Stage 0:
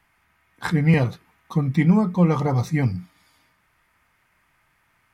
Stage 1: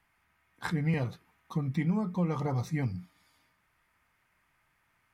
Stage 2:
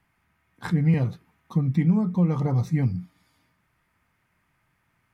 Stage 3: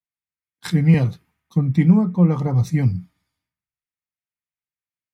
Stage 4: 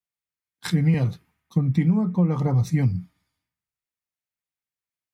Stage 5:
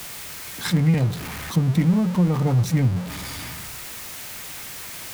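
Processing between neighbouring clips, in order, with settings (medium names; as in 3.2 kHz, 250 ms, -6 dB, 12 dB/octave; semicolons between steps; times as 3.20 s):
compression 2:1, threshold -21 dBFS, peak gain reduction 5.5 dB; trim -7.5 dB
peaking EQ 150 Hz +9 dB 2.8 oct
three bands expanded up and down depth 100%; trim +4.5 dB
compression, threshold -16 dBFS, peak gain reduction 8.5 dB
jump at every zero crossing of -26.5 dBFS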